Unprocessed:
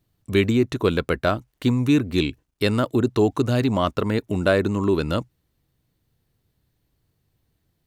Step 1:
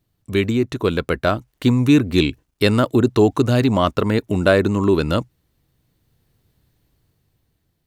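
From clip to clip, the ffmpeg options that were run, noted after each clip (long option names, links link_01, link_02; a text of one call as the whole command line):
ffmpeg -i in.wav -af "dynaudnorm=framelen=300:gausssize=9:maxgain=10dB" out.wav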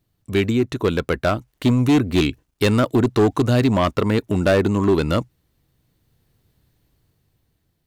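ffmpeg -i in.wav -af "volume=11.5dB,asoftclip=hard,volume=-11.5dB" out.wav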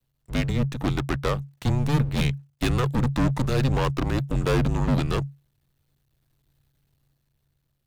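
ffmpeg -i in.wav -af "aeval=exprs='max(val(0),0)':channel_layout=same,afreqshift=-140,volume=-2dB" out.wav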